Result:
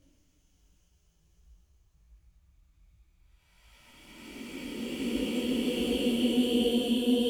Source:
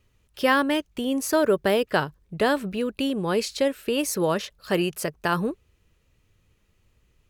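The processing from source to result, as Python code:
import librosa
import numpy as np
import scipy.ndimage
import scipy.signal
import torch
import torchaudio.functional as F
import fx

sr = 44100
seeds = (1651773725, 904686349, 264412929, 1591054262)

y = fx.paulstretch(x, sr, seeds[0], factor=43.0, window_s=0.1, from_s=0.85)
y = fx.detune_double(y, sr, cents=47)
y = y * librosa.db_to_amplitude(4.5)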